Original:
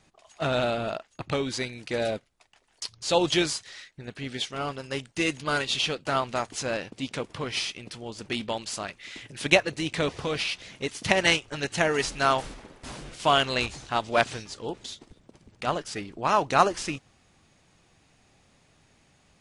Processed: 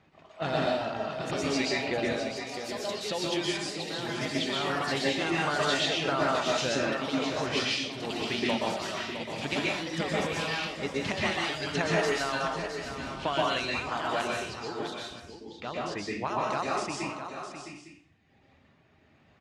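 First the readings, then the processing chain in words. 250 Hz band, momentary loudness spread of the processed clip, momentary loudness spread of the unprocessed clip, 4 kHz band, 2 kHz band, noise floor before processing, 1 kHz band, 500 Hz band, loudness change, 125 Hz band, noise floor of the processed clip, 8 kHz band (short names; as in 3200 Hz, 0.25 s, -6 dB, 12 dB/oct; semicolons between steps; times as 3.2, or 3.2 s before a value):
0.0 dB, 9 LU, 16 LU, -2.0 dB, -2.0 dB, -63 dBFS, -3.0 dB, -2.0 dB, -2.5 dB, -2.0 dB, -62 dBFS, -3.5 dB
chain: reverb removal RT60 2 s; HPF 69 Hz; low-pass opened by the level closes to 2700 Hz, open at -20 dBFS; high shelf 9000 Hz -5 dB; compressor, threshold -29 dBFS, peak gain reduction 14.5 dB; random-step tremolo; echoes that change speed 95 ms, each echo +3 st, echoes 2, each echo -6 dB; tapped delay 0.66/0.856 s -9.5/-16.5 dB; plate-style reverb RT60 0.59 s, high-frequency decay 0.85×, pre-delay 0.11 s, DRR -3.5 dB; gain +2 dB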